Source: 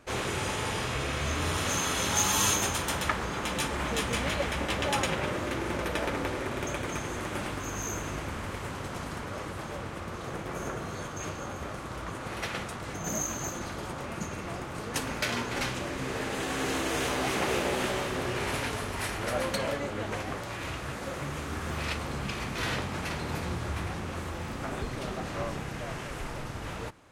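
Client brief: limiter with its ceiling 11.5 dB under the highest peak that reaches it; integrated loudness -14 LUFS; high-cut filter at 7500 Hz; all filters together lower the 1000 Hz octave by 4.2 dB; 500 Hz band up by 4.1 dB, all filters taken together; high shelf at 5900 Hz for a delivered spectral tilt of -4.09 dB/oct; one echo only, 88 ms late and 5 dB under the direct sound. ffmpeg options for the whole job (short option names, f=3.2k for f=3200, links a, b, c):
-af "lowpass=7.5k,equalizer=f=500:t=o:g=7,equalizer=f=1k:t=o:g=-8,highshelf=f=5.9k:g=4,alimiter=level_in=0.5dB:limit=-24dB:level=0:latency=1,volume=-0.5dB,aecho=1:1:88:0.562,volume=19dB"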